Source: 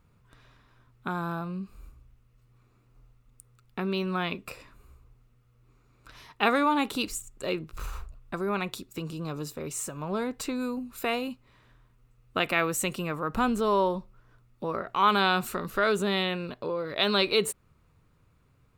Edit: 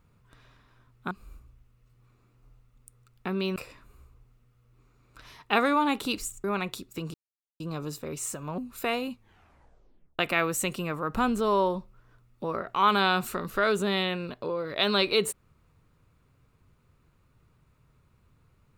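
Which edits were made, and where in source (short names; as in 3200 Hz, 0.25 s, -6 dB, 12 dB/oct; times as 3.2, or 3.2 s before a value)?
1.11–1.63 cut
4.08–4.46 cut
7.34–8.44 cut
9.14 insert silence 0.46 s
10.12–10.78 cut
11.31 tape stop 1.08 s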